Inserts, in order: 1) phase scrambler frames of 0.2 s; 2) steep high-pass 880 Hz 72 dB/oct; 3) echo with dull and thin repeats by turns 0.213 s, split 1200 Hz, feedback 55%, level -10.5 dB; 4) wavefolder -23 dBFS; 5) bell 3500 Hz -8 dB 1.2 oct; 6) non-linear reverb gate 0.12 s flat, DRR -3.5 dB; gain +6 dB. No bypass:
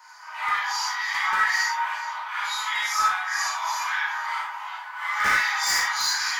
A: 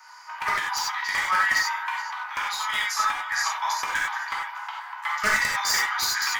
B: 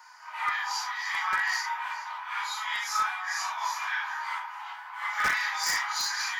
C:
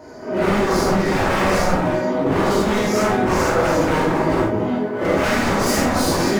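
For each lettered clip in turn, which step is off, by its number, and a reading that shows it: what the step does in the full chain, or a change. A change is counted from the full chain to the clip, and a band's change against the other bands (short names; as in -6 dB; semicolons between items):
1, 500 Hz band +6.0 dB; 6, crest factor change -2.5 dB; 2, 500 Hz band +32.5 dB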